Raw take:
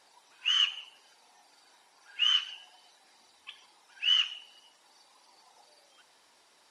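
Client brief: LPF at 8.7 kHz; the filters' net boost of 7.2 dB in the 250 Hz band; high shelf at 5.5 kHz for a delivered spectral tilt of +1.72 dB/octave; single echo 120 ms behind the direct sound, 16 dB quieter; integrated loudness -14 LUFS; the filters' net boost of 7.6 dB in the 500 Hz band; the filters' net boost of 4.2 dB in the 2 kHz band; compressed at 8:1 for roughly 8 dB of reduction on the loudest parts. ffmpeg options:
-af "lowpass=8700,equalizer=f=250:t=o:g=6,equalizer=f=500:t=o:g=8,equalizer=f=2000:t=o:g=4.5,highshelf=f=5500:g=6.5,acompressor=threshold=0.0501:ratio=8,aecho=1:1:120:0.158,volume=6.68"

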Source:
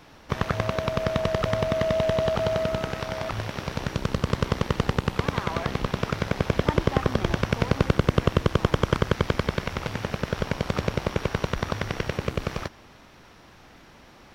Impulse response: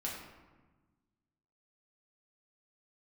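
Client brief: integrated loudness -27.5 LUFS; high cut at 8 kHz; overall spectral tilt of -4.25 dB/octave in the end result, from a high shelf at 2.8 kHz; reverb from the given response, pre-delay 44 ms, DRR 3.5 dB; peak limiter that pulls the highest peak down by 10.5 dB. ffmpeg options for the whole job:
-filter_complex "[0:a]lowpass=8000,highshelf=f=2800:g=6,alimiter=limit=0.178:level=0:latency=1,asplit=2[s0][s1];[1:a]atrim=start_sample=2205,adelay=44[s2];[s1][s2]afir=irnorm=-1:irlink=0,volume=0.531[s3];[s0][s3]amix=inputs=2:normalize=0,volume=0.944"

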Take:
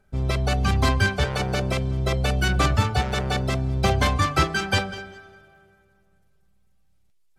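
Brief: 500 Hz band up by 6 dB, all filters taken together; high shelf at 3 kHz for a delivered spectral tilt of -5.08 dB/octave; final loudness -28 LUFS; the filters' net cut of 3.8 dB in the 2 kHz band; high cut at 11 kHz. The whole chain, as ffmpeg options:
-af "lowpass=11000,equalizer=f=500:t=o:g=8,equalizer=f=2000:t=o:g=-8,highshelf=f=3000:g=5.5,volume=0.501"

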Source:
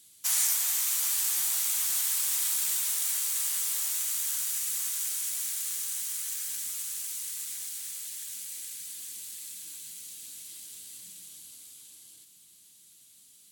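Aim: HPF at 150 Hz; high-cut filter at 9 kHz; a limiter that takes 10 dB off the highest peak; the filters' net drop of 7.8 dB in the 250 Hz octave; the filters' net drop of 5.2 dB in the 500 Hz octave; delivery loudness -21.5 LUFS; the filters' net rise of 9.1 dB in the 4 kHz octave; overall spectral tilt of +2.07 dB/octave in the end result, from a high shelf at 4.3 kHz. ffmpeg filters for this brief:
-af "highpass=150,lowpass=9000,equalizer=f=250:t=o:g=-8,equalizer=f=500:t=o:g=-6,equalizer=f=4000:t=o:g=9,highshelf=f=4300:g=4.5,volume=2.51,alimiter=limit=0.237:level=0:latency=1"

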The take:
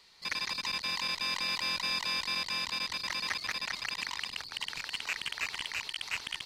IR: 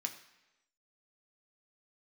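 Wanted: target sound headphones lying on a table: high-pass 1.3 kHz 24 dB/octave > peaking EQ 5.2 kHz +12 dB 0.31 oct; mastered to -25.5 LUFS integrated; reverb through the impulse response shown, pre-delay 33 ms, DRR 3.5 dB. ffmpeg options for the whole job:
-filter_complex "[0:a]asplit=2[s0][s1];[1:a]atrim=start_sample=2205,adelay=33[s2];[s1][s2]afir=irnorm=-1:irlink=0,volume=0.668[s3];[s0][s3]amix=inputs=2:normalize=0,highpass=f=1300:w=0.5412,highpass=f=1300:w=1.3066,equalizer=f=5200:t=o:w=0.31:g=12,volume=1.19"

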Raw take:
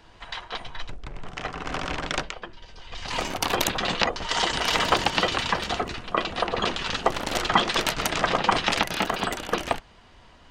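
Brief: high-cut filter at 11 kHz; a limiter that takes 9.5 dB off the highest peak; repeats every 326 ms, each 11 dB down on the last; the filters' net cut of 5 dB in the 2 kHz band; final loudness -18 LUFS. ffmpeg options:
-af "lowpass=11000,equalizer=f=2000:t=o:g=-6.5,alimiter=limit=0.178:level=0:latency=1,aecho=1:1:326|652|978:0.282|0.0789|0.0221,volume=3.76"

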